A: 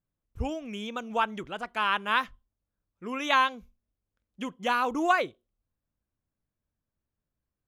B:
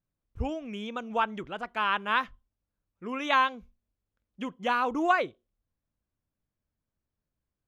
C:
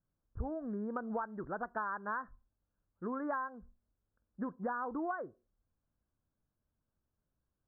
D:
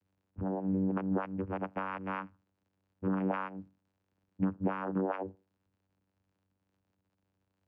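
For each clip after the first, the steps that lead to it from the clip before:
high shelf 5900 Hz -12 dB
steep low-pass 1700 Hz 96 dB/oct; compressor 12:1, threshold -35 dBFS, peak gain reduction 17.5 dB; gain +1 dB
low-pass opened by the level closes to 710 Hz, open at -33 dBFS; crackle 380/s -63 dBFS; vocoder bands 8, saw 95.5 Hz; gain +6 dB

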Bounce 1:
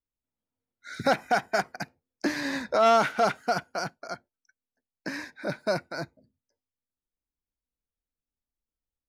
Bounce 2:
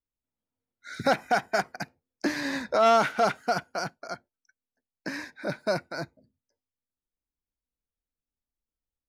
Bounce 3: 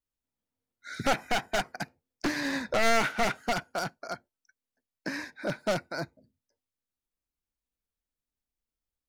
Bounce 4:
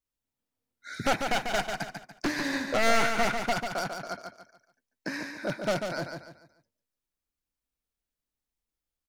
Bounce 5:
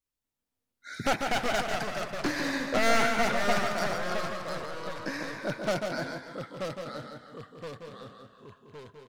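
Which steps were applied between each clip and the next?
nothing audible
one-sided fold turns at -23 dBFS
feedback echo 0.144 s, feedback 35%, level -6 dB
speakerphone echo 0.16 s, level -11 dB; echoes that change speed 0.239 s, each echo -2 st, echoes 3, each echo -6 dB; gain -1 dB

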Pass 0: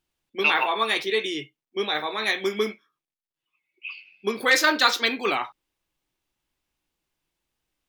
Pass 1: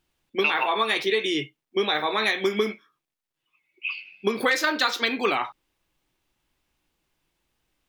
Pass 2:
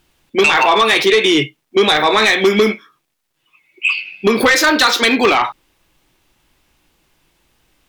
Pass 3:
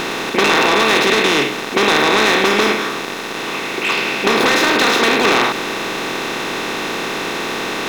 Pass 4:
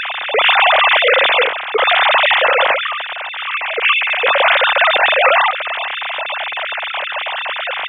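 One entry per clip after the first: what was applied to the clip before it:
compressor 6:1, threshold -26 dBFS, peak gain reduction 12 dB; tone controls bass +1 dB, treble -3 dB; gain +6.5 dB
in parallel at -2 dB: limiter -18.5 dBFS, peak gain reduction 10 dB; on the sum: sine folder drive 6 dB, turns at -6 dBFS
per-bin compression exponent 0.2; gain -10.5 dB
sine-wave speech; gain +1.5 dB

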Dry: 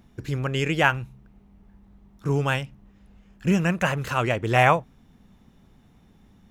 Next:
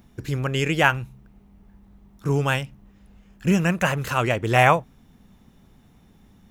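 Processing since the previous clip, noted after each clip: high shelf 8700 Hz +7 dB; gain +1.5 dB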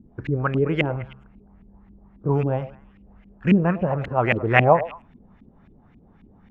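LFO low-pass saw up 3.7 Hz 240–2500 Hz; delay with a stepping band-pass 0.106 s, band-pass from 550 Hz, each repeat 1.4 oct, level -12 dB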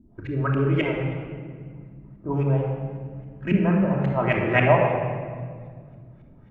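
shoebox room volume 3000 m³, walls mixed, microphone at 2.8 m; gain -6 dB

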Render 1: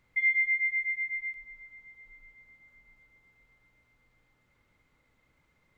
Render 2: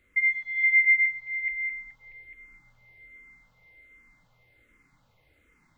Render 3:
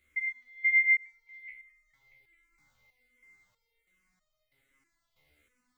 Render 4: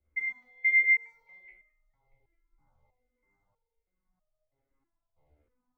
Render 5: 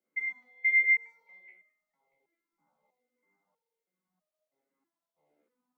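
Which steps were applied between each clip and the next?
regenerating reverse delay 0.212 s, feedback 57%, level -3 dB; endless phaser -1.3 Hz; gain +5.5 dB
high shelf 2500 Hz +11.5 dB; stepped resonator 3.1 Hz 74–620 Hz
EQ curve 120 Hz 0 dB, 830 Hz +10 dB, 1800 Hz -11 dB; three-band expander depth 70%; gain +5.5 dB
elliptic high-pass 170 Hz, stop band 40 dB

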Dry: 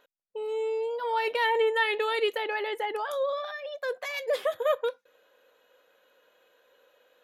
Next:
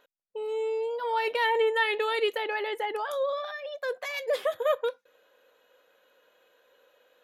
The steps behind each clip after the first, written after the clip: nothing audible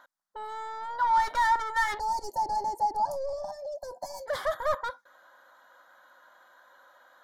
overdrive pedal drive 21 dB, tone 2200 Hz, clips at -13.5 dBFS; spectral gain 1.99–4.27, 1000–4200 Hz -28 dB; fixed phaser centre 1100 Hz, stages 4

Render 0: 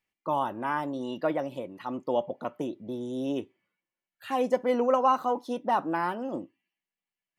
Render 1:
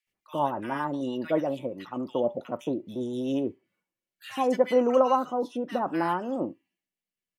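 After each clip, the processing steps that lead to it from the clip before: rotary speaker horn 7.5 Hz, later 0.6 Hz, at 3.12; bands offset in time highs, lows 70 ms, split 1600 Hz; gain +4.5 dB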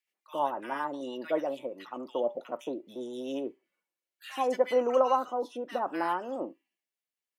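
HPF 370 Hz 12 dB/oct; gain -2 dB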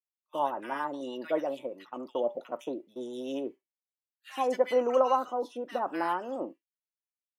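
expander -40 dBFS

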